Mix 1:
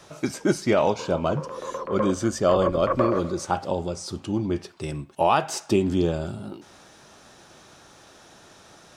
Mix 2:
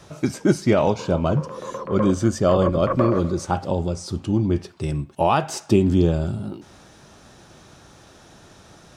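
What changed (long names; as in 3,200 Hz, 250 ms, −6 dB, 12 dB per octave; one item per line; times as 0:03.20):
speech: add low-shelf EQ 220 Hz +11 dB
background: add parametric band 160 Hz +12 dB 0.86 octaves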